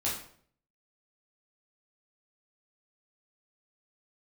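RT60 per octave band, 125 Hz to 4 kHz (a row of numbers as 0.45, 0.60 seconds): 0.70, 0.65, 0.60, 0.50, 0.50, 0.45 seconds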